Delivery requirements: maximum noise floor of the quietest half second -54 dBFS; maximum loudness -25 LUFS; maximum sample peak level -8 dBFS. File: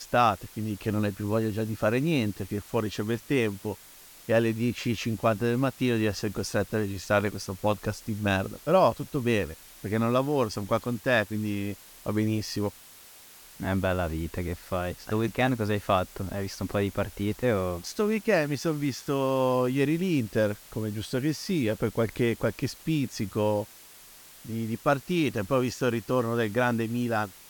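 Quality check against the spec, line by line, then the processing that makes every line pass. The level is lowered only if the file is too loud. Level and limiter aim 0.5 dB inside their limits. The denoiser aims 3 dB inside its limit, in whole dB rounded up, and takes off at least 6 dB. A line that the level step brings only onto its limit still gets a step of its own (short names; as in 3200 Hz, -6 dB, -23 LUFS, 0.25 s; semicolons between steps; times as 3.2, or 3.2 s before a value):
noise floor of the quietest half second -50 dBFS: fail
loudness -28.0 LUFS: OK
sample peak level -9.5 dBFS: OK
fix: denoiser 7 dB, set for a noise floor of -50 dBFS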